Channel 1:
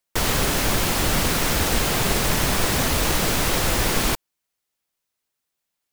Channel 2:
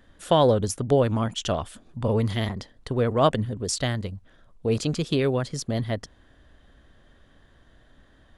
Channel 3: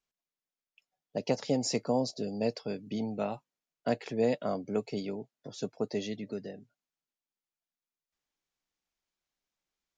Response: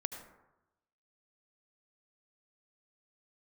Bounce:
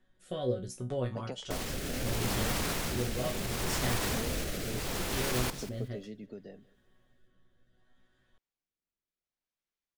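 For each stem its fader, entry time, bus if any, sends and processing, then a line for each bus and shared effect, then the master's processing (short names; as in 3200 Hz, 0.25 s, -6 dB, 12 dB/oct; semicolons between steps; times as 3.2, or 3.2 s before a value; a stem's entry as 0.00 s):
-8.5 dB, 1.35 s, bus A, no send, echo send -14.5 dB, dry
0.0 dB, 0.00 s, no bus, no send, no echo send, resonator bank B2 fifth, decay 0.22 s
-3.0 dB, 0.00 s, bus A, no send, echo send -23 dB, high shelf 5100 Hz -9 dB; compressor 3:1, threshold -34 dBFS, peak gain reduction 9 dB
bus A: 0.0 dB, limiter -21.5 dBFS, peak gain reduction 6 dB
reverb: off
echo: feedback echo 0.19 s, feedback 28%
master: rotary speaker horn 0.7 Hz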